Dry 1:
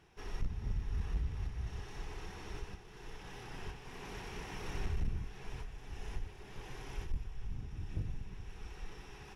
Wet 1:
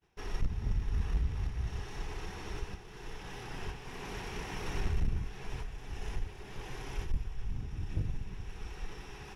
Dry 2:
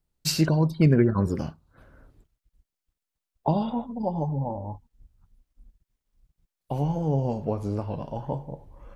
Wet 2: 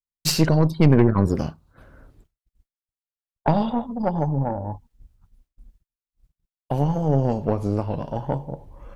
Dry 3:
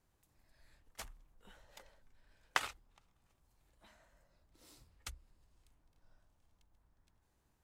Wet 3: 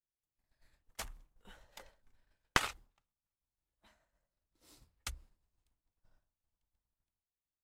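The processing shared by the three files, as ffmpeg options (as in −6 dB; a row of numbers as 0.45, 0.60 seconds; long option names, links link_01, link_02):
-af "asoftclip=type=tanh:threshold=-14.5dB,agate=range=-33dB:threshold=-56dB:ratio=3:detection=peak,aeval=exprs='0.188*(cos(1*acos(clip(val(0)/0.188,-1,1)))-cos(1*PI/2))+0.0841*(cos(2*acos(clip(val(0)/0.188,-1,1)))-cos(2*PI/2))+0.00944*(cos(4*acos(clip(val(0)/0.188,-1,1)))-cos(4*PI/2))+0.00376*(cos(6*acos(clip(val(0)/0.188,-1,1)))-cos(6*PI/2))':channel_layout=same,volume=4.5dB"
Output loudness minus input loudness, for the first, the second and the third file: +4.5, +4.0, +4.0 LU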